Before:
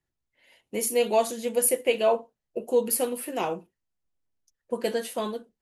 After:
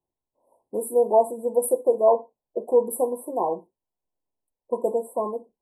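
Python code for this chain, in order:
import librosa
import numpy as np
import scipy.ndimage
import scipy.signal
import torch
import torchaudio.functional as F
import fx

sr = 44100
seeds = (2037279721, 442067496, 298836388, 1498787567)

y = fx.brickwall_bandstop(x, sr, low_hz=1100.0, high_hz=7500.0)
y = fx.bass_treble(y, sr, bass_db=-12, treble_db=-12)
y = F.gain(torch.from_numpy(y), 5.0).numpy()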